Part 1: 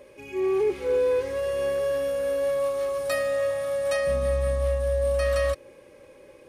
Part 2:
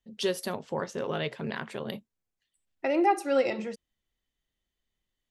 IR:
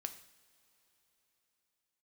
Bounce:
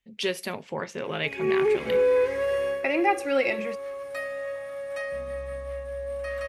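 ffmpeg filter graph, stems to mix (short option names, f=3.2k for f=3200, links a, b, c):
-filter_complex "[0:a]equalizer=f=250:t=o:w=1:g=3,equalizer=f=500:t=o:w=1:g=4,equalizer=f=1k:t=o:w=1:g=4,equalizer=f=2k:t=o:w=1:g=11,adelay=1050,volume=-4dB,afade=t=out:st=2.57:d=0.26:silence=0.316228[a];[1:a]equalizer=f=2.3k:t=o:w=0.62:g=12.5,volume=-1.5dB,asplit=2[b][c];[c]volume=-15dB[d];[2:a]atrim=start_sample=2205[e];[d][e]afir=irnorm=-1:irlink=0[f];[a][b][f]amix=inputs=3:normalize=0"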